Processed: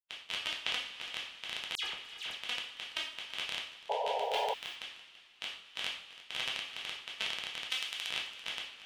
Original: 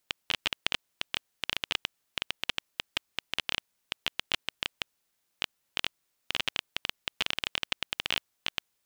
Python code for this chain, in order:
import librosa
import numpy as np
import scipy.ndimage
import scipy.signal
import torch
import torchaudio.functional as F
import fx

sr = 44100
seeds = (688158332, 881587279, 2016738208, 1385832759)

p1 = fx.bin_expand(x, sr, power=2.0)
p2 = fx.low_shelf(p1, sr, hz=370.0, db=-10.5)
p3 = fx.rev_double_slope(p2, sr, seeds[0], early_s=0.43, late_s=3.4, knee_db=-21, drr_db=0.5)
p4 = fx.transient(p3, sr, attack_db=-6, sustain_db=2)
p5 = fx.tilt_eq(p4, sr, slope=2.5, at=(7.7, 8.1))
p6 = p5 + fx.echo_single(p5, sr, ms=335, db=-16.5, dry=0)
p7 = fx.spec_paint(p6, sr, seeds[1], shape='noise', start_s=3.89, length_s=0.65, low_hz=410.0, high_hz=990.0, level_db=-32.0)
p8 = fx.rider(p7, sr, range_db=10, speed_s=0.5)
p9 = p7 + (p8 * 10.0 ** (0.0 / 20.0))
p10 = fx.dispersion(p9, sr, late='lows', ms=85.0, hz=2900.0, at=(1.75, 2.35))
p11 = fx.resample_bad(p10, sr, factor=2, down='none', up='zero_stuff', at=(4.22, 4.76))
p12 = scipy.signal.sosfilt(scipy.signal.butter(2, 11000.0, 'lowpass', fs=sr, output='sos'), p11)
y = p12 * 10.0 ** (-5.5 / 20.0)